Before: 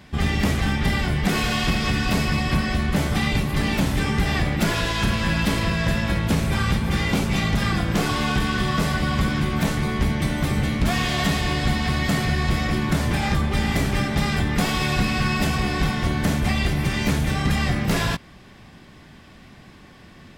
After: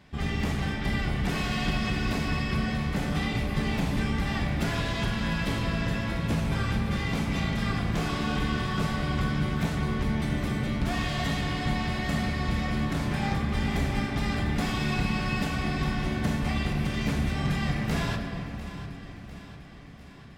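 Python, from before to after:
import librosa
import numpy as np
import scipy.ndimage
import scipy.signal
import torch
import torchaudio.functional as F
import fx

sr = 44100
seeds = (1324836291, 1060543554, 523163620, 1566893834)

p1 = fx.high_shelf(x, sr, hz=8300.0, db=-6.5)
p2 = p1 + fx.echo_feedback(p1, sr, ms=699, feedback_pct=57, wet_db=-14, dry=0)
p3 = fx.room_shoebox(p2, sr, seeds[0], volume_m3=180.0, walls='hard', distance_m=0.3)
y = p3 * 10.0 ** (-8.5 / 20.0)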